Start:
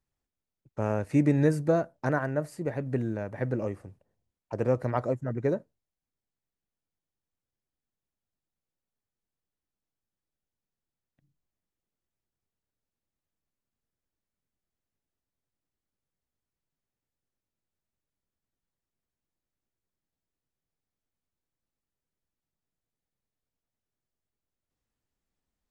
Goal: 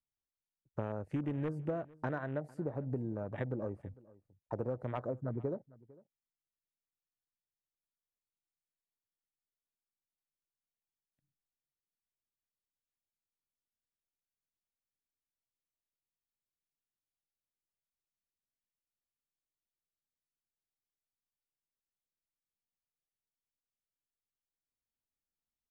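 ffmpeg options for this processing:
-af "aeval=exprs='0.188*(abs(mod(val(0)/0.188+3,4)-2)-1)':c=same,afwtdn=0.00891,acompressor=threshold=0.0178:ratio=6,aecho=1:1:452:0.075,volume=1.12"

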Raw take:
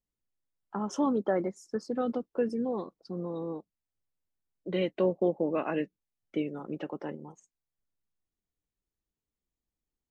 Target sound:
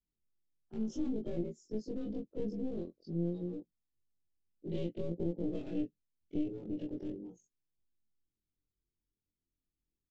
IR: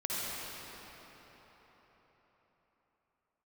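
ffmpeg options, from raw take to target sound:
-af "afftfilt=real='re':imag='-im':win_size=2048:overlap=0.75,alimiter=level_in=1.33:limit=0.0631:level=0:latency=1:release=154,volume=0.75,aresample=16000,aeval=exprs='clip(val(0),-1,0.00562)':c=same,aresample=44100,firequalizer=gain_entry='entry(350,0);entry(1000,-28);entry(3200,-8);entry(5600,-10)':delay=0.05:min_phase=1,volume=1.78"

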